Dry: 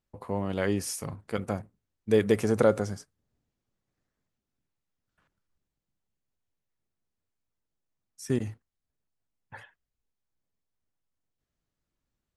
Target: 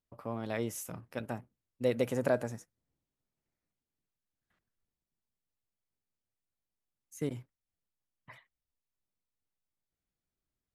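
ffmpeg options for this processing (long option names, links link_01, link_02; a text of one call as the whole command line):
ffmpeg -i in.wav -af "asetrate=50715,aresample=44100,volume=-7dB" out.wav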